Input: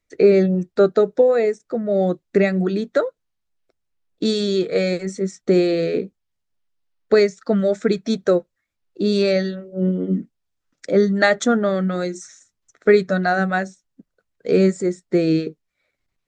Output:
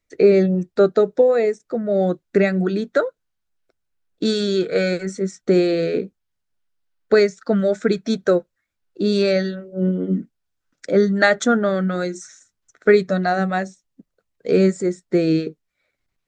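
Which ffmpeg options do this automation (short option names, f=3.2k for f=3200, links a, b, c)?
-af "asetnsamples=n=441:p=0,asendcmd='1.78 equalizer g 6.5;4.27 equalizer g 14;5.16 equalizer g 6;12.94 equalizer g -6;14.5 equalizer g 2.5',equalizer=f=1.5k:t=o:w=0.2:g=-0.5"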